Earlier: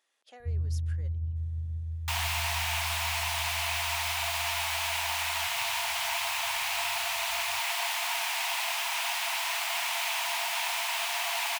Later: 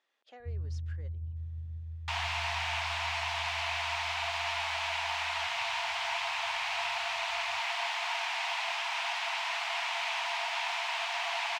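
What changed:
first sound -6.0 dB; master: add air absorption 140 m

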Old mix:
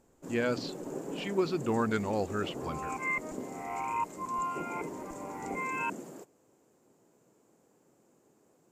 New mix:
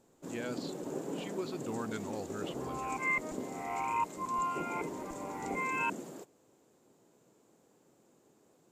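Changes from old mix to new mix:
speech -10.0 dB; master: add bell 3700 Hz +6 dB 0.63 oct

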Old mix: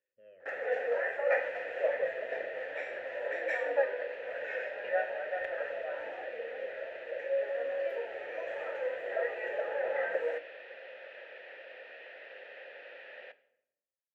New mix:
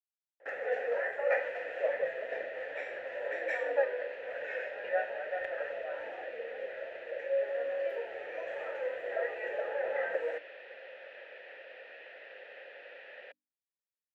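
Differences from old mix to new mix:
speech: muted; reverb: off

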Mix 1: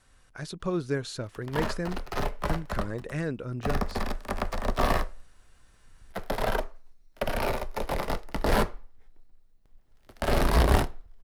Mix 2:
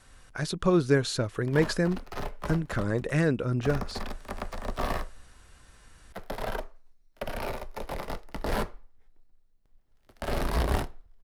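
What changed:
speech +6.5 dB; background -5.5 dB

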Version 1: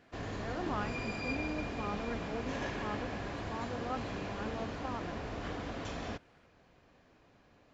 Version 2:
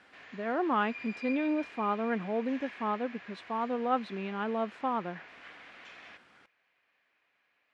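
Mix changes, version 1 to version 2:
speech +10.0 dB; background: add band-pass 2200 Hz, Q 2

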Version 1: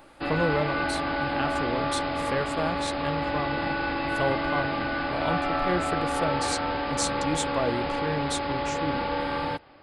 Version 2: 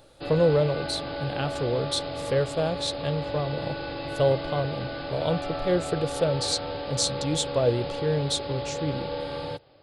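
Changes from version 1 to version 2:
background -6.5 dB; master: add graphic EQ 125/250/500/1000/2000/4000 Hz +9/-5/+9/-5/-5/+8 dB

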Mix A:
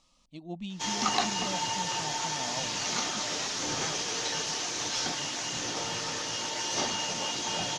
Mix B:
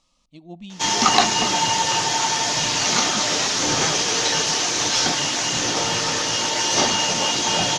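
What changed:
background +11.5 dB; reverb: on, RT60 1.4 s

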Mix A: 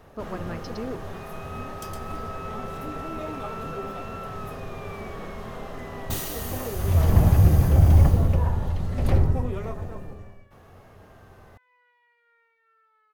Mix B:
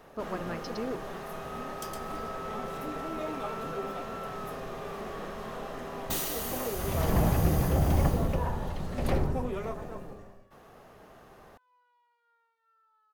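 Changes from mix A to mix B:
first sound: add bell 92 Hz -12.5 dB 0.38 oct; second sound: add fixed phaser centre 870 Hz, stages 4; master: add low shelf 160 Hz -7.5 dB

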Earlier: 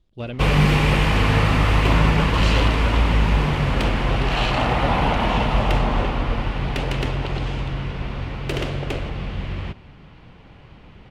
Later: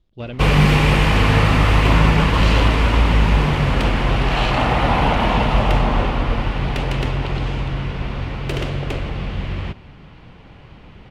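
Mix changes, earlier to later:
speech: add LPF 6700 Hz; first sound +3.0 dB

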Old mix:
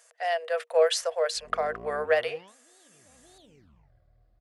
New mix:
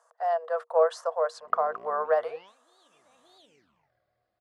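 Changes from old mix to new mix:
speech: add resonant high shelf 1600 Hz -13.5 dB, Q 3; master: add weighting filter A

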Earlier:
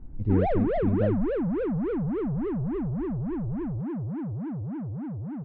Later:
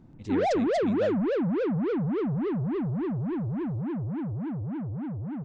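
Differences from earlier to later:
speech: add tilt +4.5 dB/oct; master: remove air absorption 450 m

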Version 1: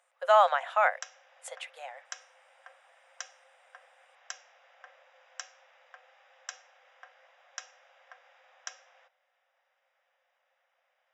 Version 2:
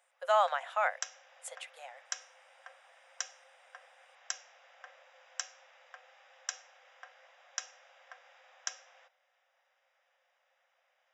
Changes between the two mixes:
speech -6.0 dB; master: add high shelf 5200 Hz +8.5 dB

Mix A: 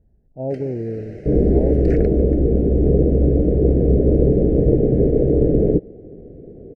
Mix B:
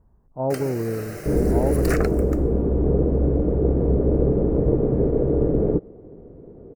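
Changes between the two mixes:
first sound: remove tape spacing loss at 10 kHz 33 dB; second sound -4.5 dB; master: remove Butterworth band-stop 1100 Hz, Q 0.94

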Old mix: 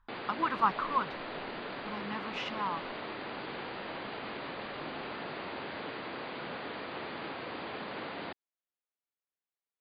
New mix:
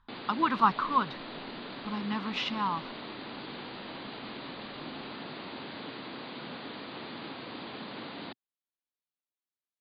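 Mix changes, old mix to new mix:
background -6.5 dB; master: add graphic EQ 125/250/1000/4000 Hz +6/+9/+3/+11 dB

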